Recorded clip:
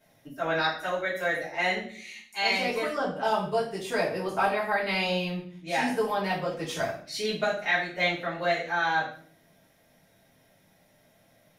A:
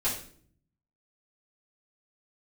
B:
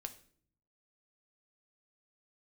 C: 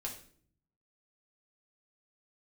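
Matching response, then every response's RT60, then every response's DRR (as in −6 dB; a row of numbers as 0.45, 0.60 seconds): A; 0.55, 0.55, 0.55 seconds; −10.0, 6.5, −2.0 decibels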